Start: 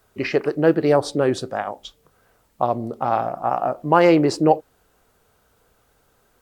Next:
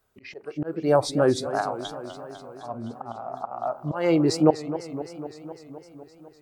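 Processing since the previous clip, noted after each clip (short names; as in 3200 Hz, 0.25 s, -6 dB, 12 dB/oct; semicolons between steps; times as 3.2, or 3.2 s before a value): spectral noise reduction 11 dB; auto swell 0.387 s; warbling echo 0.254 s, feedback 71%, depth 181 cents, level -13 dB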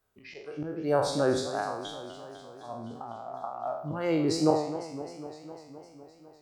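spectral trails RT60 0.68 s; gain -7 dB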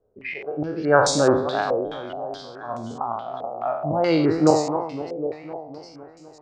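stepped low-pass 4.7 Hz 500–7000 Hz; gain +7 dB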